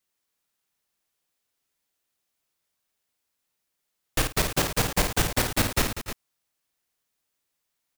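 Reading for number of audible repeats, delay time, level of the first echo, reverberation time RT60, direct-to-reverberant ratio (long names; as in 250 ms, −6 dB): 4, 52 ms, −5.5 dB, no reverb audible, no reverb audible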